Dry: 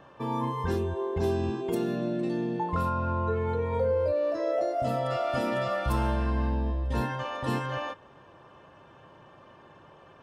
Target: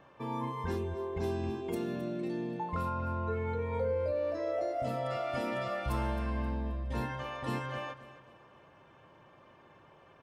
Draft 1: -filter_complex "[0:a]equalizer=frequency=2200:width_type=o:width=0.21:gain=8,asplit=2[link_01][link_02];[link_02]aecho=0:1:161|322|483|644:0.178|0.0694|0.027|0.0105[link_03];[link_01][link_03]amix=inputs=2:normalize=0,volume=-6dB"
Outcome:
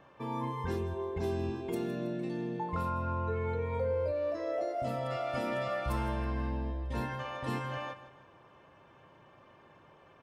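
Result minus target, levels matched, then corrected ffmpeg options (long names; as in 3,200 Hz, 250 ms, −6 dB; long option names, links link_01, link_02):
echo 104 ms early
-filter_complex "[0:a]equalizer=frequency=2200:width_type=o:width=0.21:gain=8,asplit=2[link_01][link_02];[link_02]aecho=0:1:265|530|795|1060:0.178|0.0694|0.027|0.0105[link_03];[link_01][link_03]amix=inputs=2:normalize=0,volume=-6dB"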